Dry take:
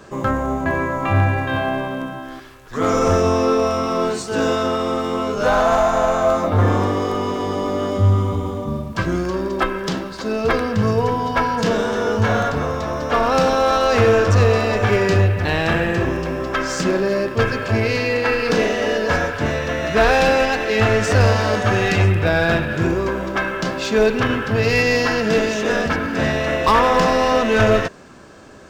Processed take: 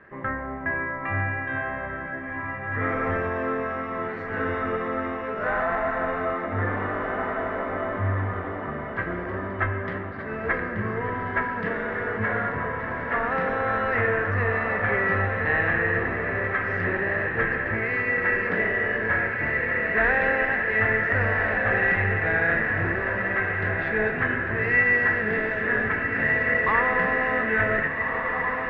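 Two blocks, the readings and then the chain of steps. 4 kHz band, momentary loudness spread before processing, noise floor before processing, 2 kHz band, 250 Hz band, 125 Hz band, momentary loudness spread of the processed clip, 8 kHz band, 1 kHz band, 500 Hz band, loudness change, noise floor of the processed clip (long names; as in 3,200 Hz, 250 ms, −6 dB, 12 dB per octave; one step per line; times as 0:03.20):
below −15 dB, 7 LU, −33 dBFS, +1.0 dB, −10.5 dB, −10.5 dB, 9 LU, below −40 dB, −7.5 dB, −10.0 dB, −6.0 dB, −33 dBFS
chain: transistor ladder low-pass 2,000 Hz, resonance 80%
feedback delay with all-pass diffusion 1,579 ms, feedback 40%, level −3.5 dB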